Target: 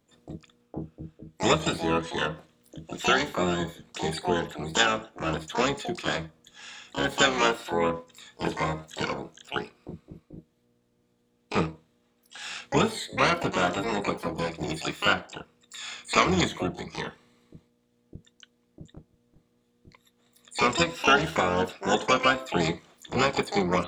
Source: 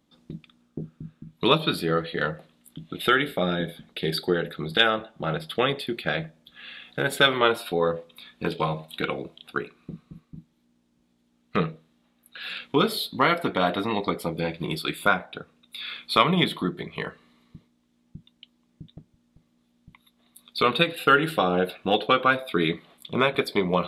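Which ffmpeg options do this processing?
-filter_complex "[0:a]acrossover=split=4300[a][b];[b]acompressor=threshold=-48dB:ratio=4:attack=1:release=60[c];[a][c]amix=inputs=2:normalize=0,asplit=3[d][e][f];[e]asetrate=22050,aresample=44100,atempo=2,volume=-8dB[g];[f]asetrate=88200,aresample=44100,atempo=0.5,volume=-4dB[h];[d][g][h]amix=inputs=3:normalize=0,volume=-3.5dB"

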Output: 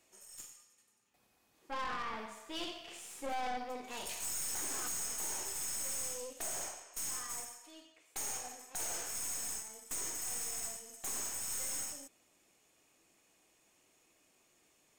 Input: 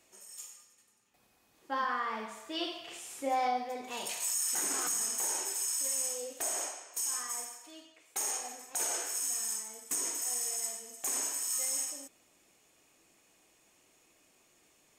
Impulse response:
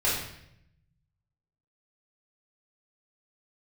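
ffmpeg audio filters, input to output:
-af "aeval=exprs='(tanh(56.2*val(0)+0.7)-tanh(0.7))/56.2':c=same"

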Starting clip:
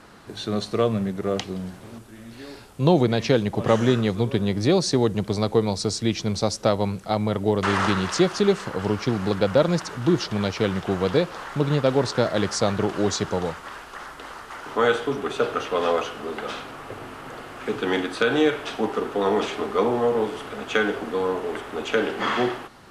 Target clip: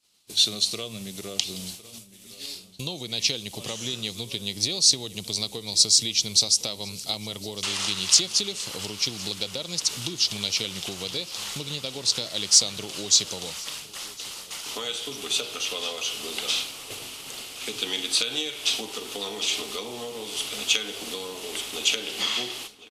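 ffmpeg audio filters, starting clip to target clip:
-filter_complex "[0:a]agate=range=-33dB:threshold=-33dB:ratio=3:detection=peak,acompressor=threshold=-28dB:ratio=6,aexciter=amount=10.4:drive=7.2:freq=2.5k,asplit=2[a][b];[b]adelay=1058,lowpass=f=3.2k:p=1,volume=-17.5dB,asplit=2[c][d];[d]adelay=1058,lowpass=f=3.2k:p=1,volume=0.55,asplit=2[e][f];[f]adelay=1058,lowpass=f=3.2k:p=1,volume=0.55,asplit=2[g][h];[h]adelay=1058,lowpass=f=3.2k:p=1,volume=0.55,asplit=2[i][j];[j]adelay=1058,lowpass=f=3.2k:p=1,volume=0.55[k];[c][e][g][i][k]amix=inputs=5:normalize=0[l];[a][l]amix=inputs=2:normalize=0,volume=-6dB"

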